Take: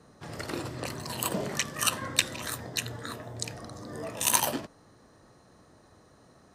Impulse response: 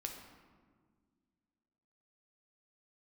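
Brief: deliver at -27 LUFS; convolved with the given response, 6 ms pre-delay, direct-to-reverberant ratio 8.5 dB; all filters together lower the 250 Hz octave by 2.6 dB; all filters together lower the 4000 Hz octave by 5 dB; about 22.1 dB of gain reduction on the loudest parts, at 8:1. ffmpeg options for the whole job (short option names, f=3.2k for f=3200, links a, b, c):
-filter_complex "[0:a]equalizer=f=250:t=o:g=-3.5,equalizer=f=4k:t=o:g=-6.5,acompressor=threshold=-44dB:ratio=8,asplit=2[a][b];[1:a]atrim=start_sample=2205,adelay=6[c];[b][c]afir=irnorm=-1:irlink=0,volume=-7dB[d];[a][d]amix=inputs=2:normalize=0,volume=20dB"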